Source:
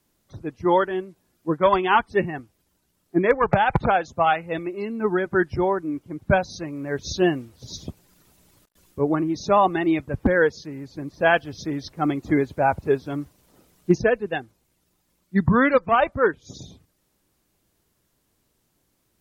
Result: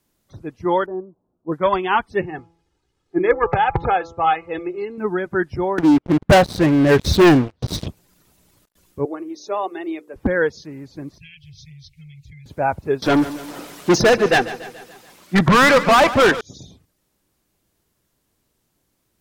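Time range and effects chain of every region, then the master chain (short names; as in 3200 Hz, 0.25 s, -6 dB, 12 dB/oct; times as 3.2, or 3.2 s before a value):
0.86–1.52 inverse Chebyshev low-pass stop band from 2100 Hz + low shelf 120 Hz -6.5 dB + mismatched tape noise reduction decoder only
2.21–4.98 air absorption 94 m + comb 2.4 ms + de-hum 167.1 Hz, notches 8
5.78–7.88 LPF 2700 Hz + sample leveller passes 5
9.05–10.16 ladder high-pass 320 Hz, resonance 45% + high shelf 4700 Hz +8.5 dB + notches 60/120/180/240/300/360/420/480 Hz
11.18–12.46 Chebyshev band-stop 150–2200 Hz, order 5 + high shelf 5800 Hz -10.5 dB + compressor 10:1, threshold -39 dBFS
13.02–16.41 overdrive pedal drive 33 dB, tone 3700 Hz, clips at -6 dBFS + feedback echo 0.143 s, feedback 54%, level -15 dB
whole clip: dry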